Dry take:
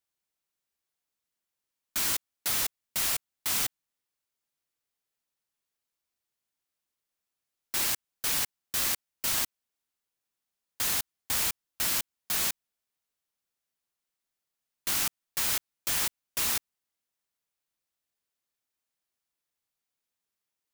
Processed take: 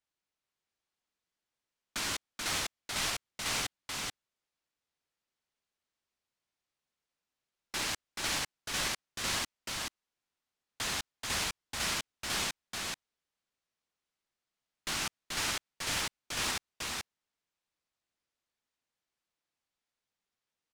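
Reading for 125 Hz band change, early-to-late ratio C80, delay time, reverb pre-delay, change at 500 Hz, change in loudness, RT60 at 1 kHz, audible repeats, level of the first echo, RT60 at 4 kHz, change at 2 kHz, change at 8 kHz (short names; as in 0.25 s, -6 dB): +2.0 dB, none, 0.433 s, none, +1.5 dB, -6.0 dB, none, 1, -3.0 dB, none, +1.0 dB, -5.5 dB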